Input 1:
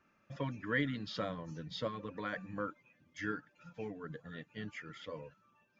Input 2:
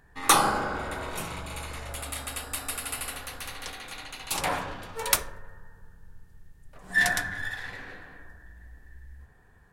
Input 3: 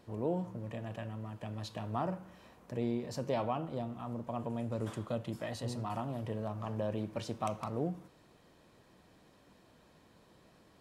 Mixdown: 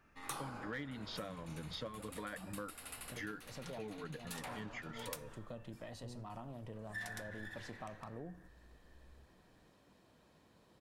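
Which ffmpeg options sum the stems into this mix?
-filter_complex "[0:a]volume=1.19,asplit=2[s0][s1];[1:a]volume=0.188[s2];[2:a]acompressor=threshold=0.00398:ratio=1.5,adelay=400,volume=0.596[s3];[s1]apad=whole_len=498624[s4];[s3][s4]sidechaincompress=threshold=0.00282:ratio=8:attack=16:release=126[s5];[s0][s2][s5]amix=inputs=3:normalize=0,aeval=exprs='clip(val(0),-1,0.0447)':c=same,acompressor=threshold=0.00794:ratio=4"

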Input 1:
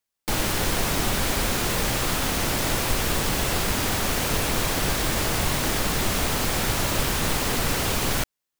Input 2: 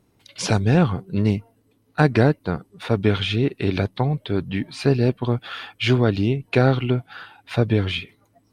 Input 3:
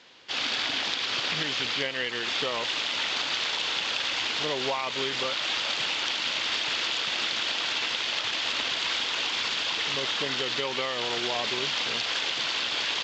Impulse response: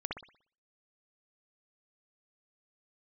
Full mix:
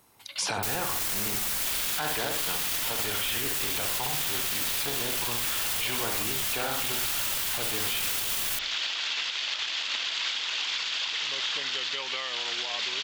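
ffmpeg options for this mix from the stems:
-filter_complex "[0:a]adelay=350,volume=0.841,asplit=2[s0][s1];[s1]volume=0.141[s2];[1:a]equalizer=f=900:w=1.5:g=9,acrossover=split=230[s3][s4];[s3]acompressor=threshold=0.0631:ratio=6[s5];[s5][s4]amix=inputs=2:normalize=0,volume=0.75,asplit=2[s6][s7];[s7]volume=0.335[s8];[2:a]adelay=1350,volume=0.447[s9];[s0][s6]amix=inputs=2:normalize=0,highshelf=f=8300:g=11,alimiter=limit=0.106:level=0:latency=1:release=20,volume=1[s10];[3:a]atrim=start_sample=2205[s11];[s2][s8]amix=inputs=2:normalize=0[s12];[s12][s11]afir=irnorm=-1:irlink=0[s13];[s9][s10][s13]amix=inputs=3:normalize=0,tiltshelf=f=820:g=-7.5,alimiter=limit=0.106:level=0:latency=1:release=94"

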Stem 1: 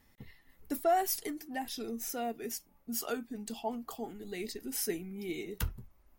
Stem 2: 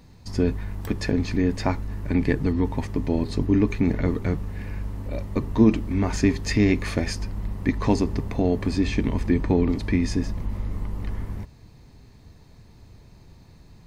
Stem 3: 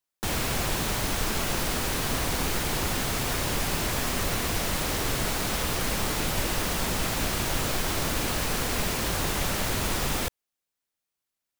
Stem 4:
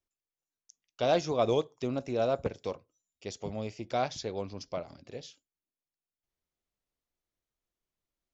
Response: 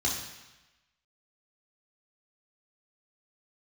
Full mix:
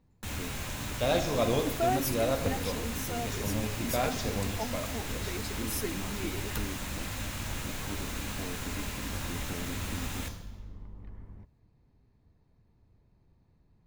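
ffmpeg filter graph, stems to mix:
-filter_complex "[0:a]adelay=950,volume=0.891[s0];[1:a]lowpass=f=1400:p=1,alimiter=limit=0.158:level=0:latency=1,volume=0.158[s1];[2:a]volume=0.299,asplit=2[s2][s3];[s3]volume=0.251[s4];[3:a]volume=1.12,asplit=2[s5][s6];[s6]volume=0.224[s7];[4:a]atrim=start_sample=2205[s8];[s4][s7]amix=inputs=2:normalize=0[s9];[s9][s8]afir=irnorm=-1:irlink=0[s10];[s0][s1][s2][s5][s10]amix=inputs=5:normalize=0"

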